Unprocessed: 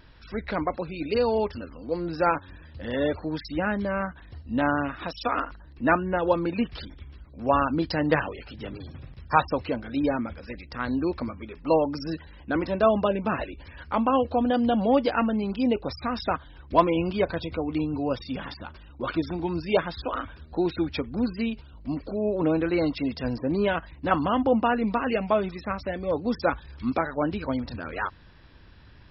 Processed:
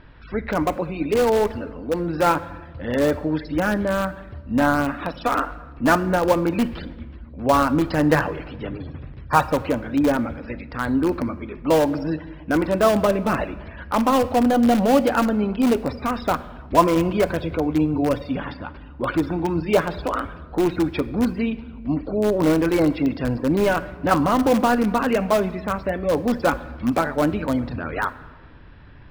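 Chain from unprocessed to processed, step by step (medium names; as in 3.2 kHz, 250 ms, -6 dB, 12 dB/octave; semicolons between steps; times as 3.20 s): low-pass 2.4 kHz 12 dB/octave; in parallel at -11 dB: integer overflow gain 18.5 dB; on the sum: simulated room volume 1100 m³, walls mixed, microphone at 0.36 m; trim +4 dB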